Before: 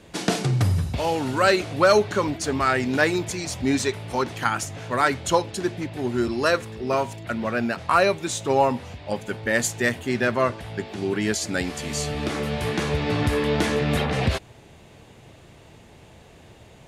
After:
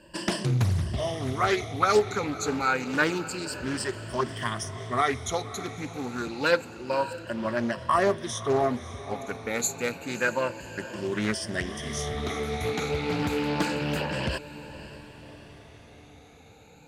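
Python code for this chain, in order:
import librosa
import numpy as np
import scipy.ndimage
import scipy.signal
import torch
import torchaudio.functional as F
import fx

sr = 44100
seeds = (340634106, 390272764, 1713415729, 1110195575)

y = fx.spec_ripple(x, sr, per_octave=1.3, drift_hz=0.28, depth_db=21)
y = fx.echo_diffused(y, sr, ms=572, feedback_pct=51, wet_db=-15.0)
y = fx.doppler_dist(y, sr, depth_ms=0.59)
y = y * librosa.db_to_amplitude(-8.5)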